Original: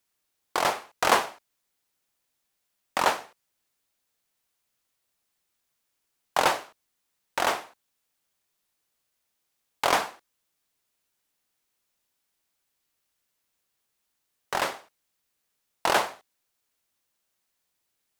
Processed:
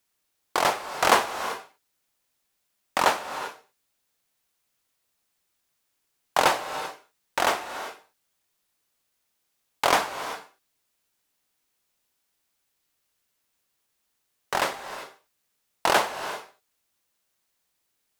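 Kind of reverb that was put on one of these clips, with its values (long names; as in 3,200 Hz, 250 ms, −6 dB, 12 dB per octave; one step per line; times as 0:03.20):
reverb whose tail is shaped and stops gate 410 ms rising, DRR 10.5 dB
level +2 dB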